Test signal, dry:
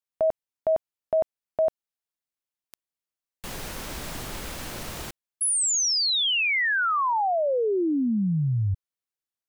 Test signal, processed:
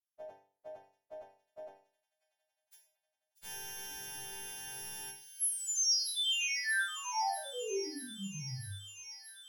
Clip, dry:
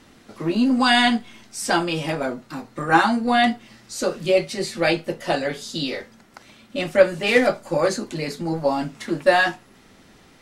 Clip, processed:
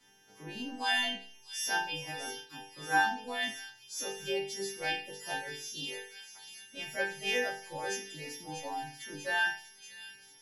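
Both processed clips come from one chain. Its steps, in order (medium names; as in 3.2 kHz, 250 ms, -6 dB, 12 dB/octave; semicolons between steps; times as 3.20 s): partials quantised in pitch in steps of 2 st; reverb removal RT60 0.64 s; chord resonator G2 sus4, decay 0.45 s; de-hum 178.9 Hz, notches 31; on a send: feedback echo behind a high-pass 639 ms, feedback 75%, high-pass 3.4 kHz, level -9 dB; on the sum: trim -1.5 dB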